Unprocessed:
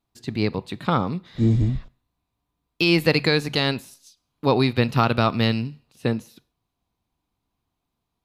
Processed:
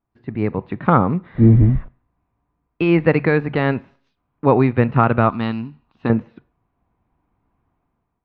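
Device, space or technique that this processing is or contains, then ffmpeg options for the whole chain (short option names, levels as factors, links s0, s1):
action camera in a waterproof case: -filter_complex "[0:a]asettb=1/sr,asplit=3[s0][s1][s2];[s0]atrim=end=5.294[s3];[s1]atrim=start=5.29:end=6.1,asetpts=PTS-STARTPTS,afade=t=in:d=0.004:c=qsin,afade=t=out:st=0.806:d=0.004:c=qsin,equalizer=f=125:t=o:w=1:g=-10,equalizer=f=500:t=o:w=1:g=-12,equalizer=f=1000:t=o:w=1:g=5,equalizer=f=2000:t=o:w=1:g=-8,equalizer=f=4000:t=o:w=1:g=7,equalizer=f=8000:t=o:w=1:g=6[s4];[s2]atrim=start=6.096[s5];[s3][s4]acrossfade=d=0.004:c1=hsin:c2=qsin[s6];[s6][s5]acrossfade=d=0.004:c1=qsin:c2=hsin,lowpass=f=2000:w=0.5412,lowpass=f=2000:w=1.3066,dynaudnorm=f=240:g=5:m=3.55" -ar 22050 -c:a aac -b:a 96k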